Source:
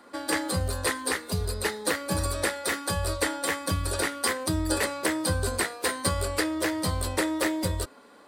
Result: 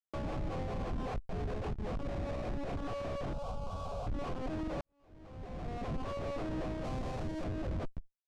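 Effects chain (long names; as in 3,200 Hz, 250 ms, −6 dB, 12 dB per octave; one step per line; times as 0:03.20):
0:02.07–0:02.77: lower of the sound and its delayed copy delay 0.39 ms
formant filter a
downward compressor 12 to 1, threshold −48 dBFS, peak gain reduction 14.5 dB
comparator with hysteresis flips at −53 dBFS
low-pass filter 6,800 Hz 12 dB per octave
spectral tilt −3 dB per octave
0:03.33–0:04.07: phaser with its sweep stopped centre 780 Hz, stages 4
0:04.81–0:06.02: fade in quadratic
0:06.84–0:07.44: bass and treble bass +2 dB, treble +6 dB
brickwall limiter −43.5 dBFS, peak gain reduction 28.5 dB
level +13 dB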